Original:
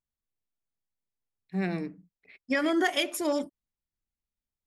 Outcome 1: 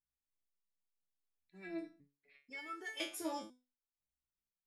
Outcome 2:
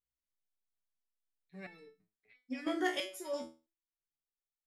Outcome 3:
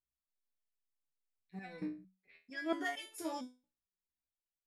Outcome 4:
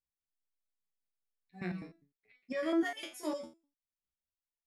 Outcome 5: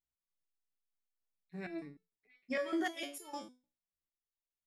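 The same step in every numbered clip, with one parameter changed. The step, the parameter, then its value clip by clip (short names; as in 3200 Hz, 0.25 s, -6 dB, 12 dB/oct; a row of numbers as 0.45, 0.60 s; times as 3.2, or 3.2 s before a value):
stepped resonator, rate: 2, 3, 4.4, 9.9, 6.6 Hz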